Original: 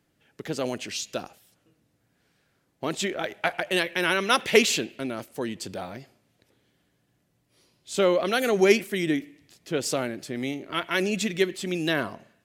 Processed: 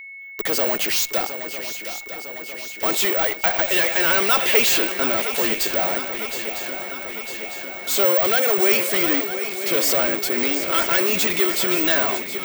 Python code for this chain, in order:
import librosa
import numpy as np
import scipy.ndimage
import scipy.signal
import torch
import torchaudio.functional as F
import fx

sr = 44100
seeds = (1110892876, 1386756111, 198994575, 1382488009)

p1 = scipy.signal.sosfilt(scipy.signal.butter(2, 480.0, 'highpass', fs=sr, output='sos'), x)
p2 = fx.fuzz(p1, sr, gain_db=45.0, gate_db=-52.0)
p3 = p1 + (p2 * librosa.db_to_amplitude(-7.0))
p4 = fx.echo_swing(p3, sr, ms=953, ratio=3, feedback_pct=64, wet_db=-11.0)
p5 = (np.kron(scipy.signal.resample_poly(p4, 1, 2), np.eye(2)[0]) * 2)[:len(p4)]
p6 = p5 + 10.0 ** (-32.0 / 20.0) * np.sin(2.0 * np.pi * 2200.0 * np.arange(len(p5)) / sr)
y = p6 * librosa.db_to_amplitude(-3.5)